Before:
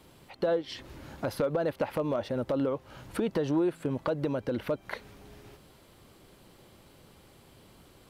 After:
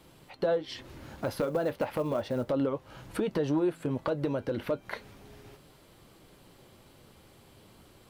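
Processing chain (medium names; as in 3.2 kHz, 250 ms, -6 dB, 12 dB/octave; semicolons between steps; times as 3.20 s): flange 0.33 Hz, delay 5.9 ms, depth 4.2 ms, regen -64%; 0.98–2.50 s: short-mantissa float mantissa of 4-bit; trim +4 dB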